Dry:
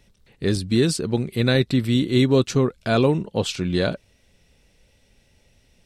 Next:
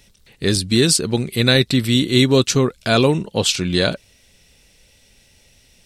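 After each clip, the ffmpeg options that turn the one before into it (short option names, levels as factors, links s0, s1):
-af "highshelf=f=2300:g=10.5,volume=1.33"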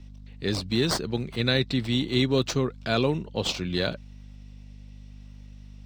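-filter_complex "[0:a]aeval=exprs='val(0)+0.02*(sin(2*PI*50*n/s)+sin(2*PI*2*50*n/s)/2+sin(2*PI*3*50*n/s)/3+sin(2*PI*4*50*n/s)/4+sin(2*PI*5*50*n/s)/5)':c=same,acrossover=split=120|6600[s0][s1][s2];[s2]acrusher=samples=22:mix=1:aa=0.000001:lfo=1:lforange=13.2:lforate=0.68[s3];[s0][s1][s3]amix=inputs=3:normalize=0,volume=0.355"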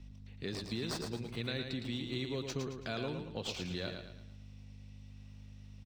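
-filter_complex "[0:a]equalizer=f=2500:w=6.4:g=2,acompressor=threshold=0.0224:ratio=2.5,asplit=2[s0][s1];[s1]aecho=0:1:111|222|333|444|555:0.501|0.2|0.0802|0.0321|0.0128[s2];[s0][s2]amix=inputs=2:normalize=0,volume=0.501"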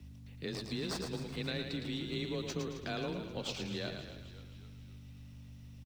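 -filter_complex "[0:a]afreqshift=22,acrusher=bits=11:mix=0:aa=0.000001,asplit=7[s0][s1][s2][s3][s4][s5][s6];[s1]adelay=265,afreqshift=-57,volume=0.224[s7];[s2]adelay=530,afreqshift=-114,volume=0.12[s8];[s3]adelay=795,afreqshift=-171,volume=0.0653[s9];[s4]adelay=1060,afreqshift=-228,volume=0.0351[s10];[s5]adelay=1325,afreqshift=-285,volume=0.0191[s11];[s6]adelay=1590,afreqshift=-342,volume=0.0102[s12];[s0][s7][s8][s9][s10][s11][s12]amix=inputs=7:normalize=0"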